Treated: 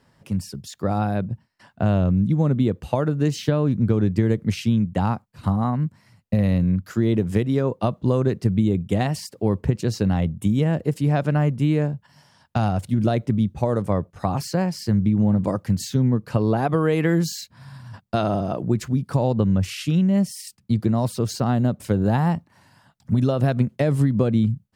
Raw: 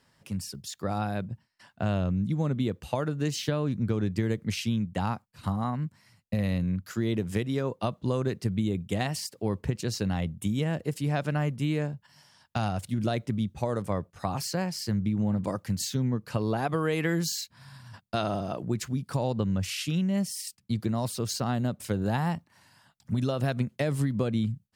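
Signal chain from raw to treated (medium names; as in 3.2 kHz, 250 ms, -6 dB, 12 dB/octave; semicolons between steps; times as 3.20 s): tilt shelf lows +4.5 dB, about 1.4 kHz; trim +4 dB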